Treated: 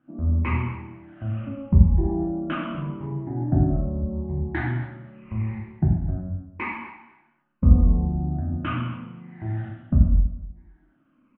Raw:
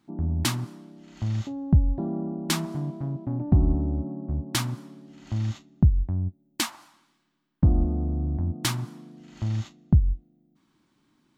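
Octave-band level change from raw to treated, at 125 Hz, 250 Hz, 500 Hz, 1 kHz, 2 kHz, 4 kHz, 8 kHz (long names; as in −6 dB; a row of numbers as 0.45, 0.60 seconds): +2.0 dB, +2.5 dB, +3.5 dB, +4.0 dB, +3.5 dB, below −10 dB, below −40 dB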